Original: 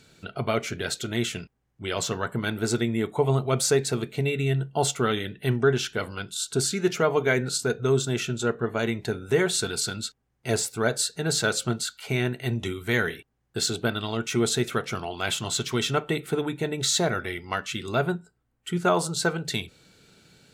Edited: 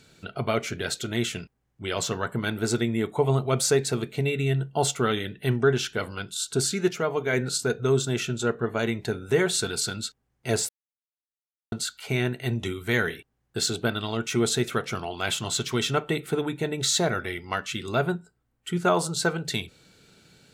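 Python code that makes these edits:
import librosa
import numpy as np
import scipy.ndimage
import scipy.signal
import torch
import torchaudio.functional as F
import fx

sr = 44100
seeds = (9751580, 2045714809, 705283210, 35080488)

y = fx.edit(x, sr, fx.clip_gain(start_s=6.89, length_s=0.44, db=-4.0),
    fx.silence(start_s=10.69, length_s=1.03), tone=tone)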